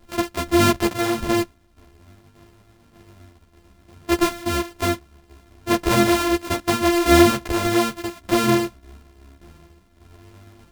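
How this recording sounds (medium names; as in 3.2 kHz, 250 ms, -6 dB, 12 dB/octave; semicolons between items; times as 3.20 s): a buzz of ramps at a fixed pitch in blocks of 128 samples; tremolo saw down 1.7 Hz, depth 55%; a shimmering, thickened sound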